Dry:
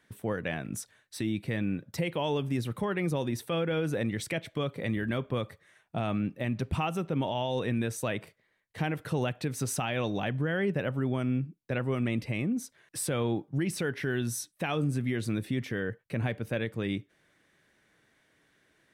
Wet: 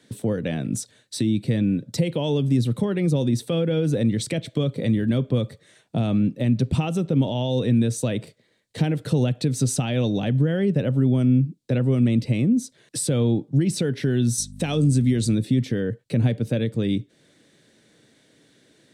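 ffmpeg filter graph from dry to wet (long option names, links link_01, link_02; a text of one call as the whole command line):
ffmpeg -i in.wav -filter_complex "[0:a]asettb=1/sr,asplit=3[link_01][link_02][link_03];[link_01]atrim=end=14.384[link_04];[link_02]atrim=start=14.38:end=15.35,asetpts=PTS-STARTPTS,afade=type=in:duration=0.004:curve=qsin,afade=type=out:start_time=0.966:duration=0.004:curve=qsin,equalizer=frequency=7600:width_type=o:width=1.5:gain=8,aeval=exprs='val(0)+0.00562*(sin(2*PI*50*n/s)+sin(2*PI*2*50*n/s)/2+sin(2*PI*3*50*n/s)/3+sin(2*PI*4*50*n/s)/4+sin(2*PI*5*50*n/s)/5)':channel_layout=same[link_05];[link_03]atrim=start=15.346[link_06];[link_04][link_05]acrossfade=duration=0.004:curve1=hsin:curve2=qsin[link_07];[link_07][link_06]acrossfade=duration=0.004:curve1=qsin:curve2=hsin,equalizer=frequency=125:width_type=o:width=1:gain=10,equalizer=frequency=250:width_type=o:width=1:gain=12,equalizer=frequency=500:width_type=o:width=1:gain=10,equalizer=frequency=4000:width_type=o:width=1:gain=12,equalizer=frequency=8000:width_type=o:width=1:gain=12,acrossover=split=180[link_08][link_09];[link_09]acompressor=threshold=-34dB:ratio=1.5[link_10];[link_08][link_10]amix=inputs=2:normalize=0,bandreject=frequency=1100:width=29" out.wav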